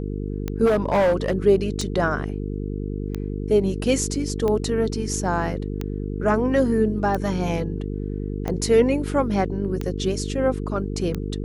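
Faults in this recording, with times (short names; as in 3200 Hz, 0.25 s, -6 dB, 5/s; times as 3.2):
buzz 50 Hz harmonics 9 -28 dBFS
tick 45 rpm -14 dBFS
0.65–1.38 clipped -15 dBFS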